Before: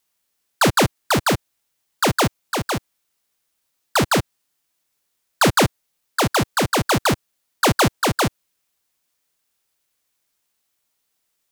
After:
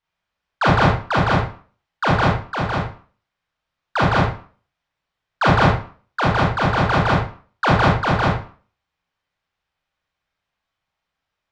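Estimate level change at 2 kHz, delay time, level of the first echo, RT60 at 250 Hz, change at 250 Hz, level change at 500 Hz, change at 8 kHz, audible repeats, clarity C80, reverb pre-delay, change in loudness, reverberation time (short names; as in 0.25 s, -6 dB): +2.0 dB, none, none, 0.50 s, +0.5 dB, 0.0 dB, -18.0 dB, none, 7.0 dB, 27 ms, +1.0 dB, 0.40 s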